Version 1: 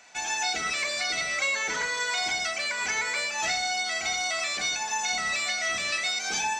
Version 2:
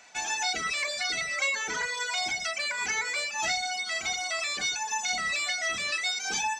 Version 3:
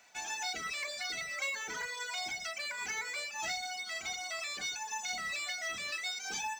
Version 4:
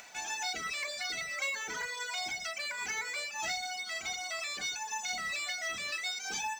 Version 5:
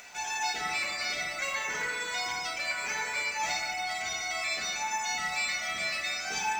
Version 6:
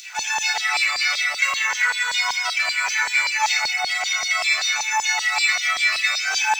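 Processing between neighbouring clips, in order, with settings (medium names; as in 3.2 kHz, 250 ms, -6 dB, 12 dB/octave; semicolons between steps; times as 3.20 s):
reverb removal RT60 1.8 s
companded quantiser 6-bit; trim -8 dB
upward compressor, threshold -45 dBFS; trim +1.5 dB
reverberation RT60 2.2 s, pre-delay 5 ms, DRR -4 dB
LFO high-pass saw down 5.2 Hz 790–4500 Hz; trim +8.5 dB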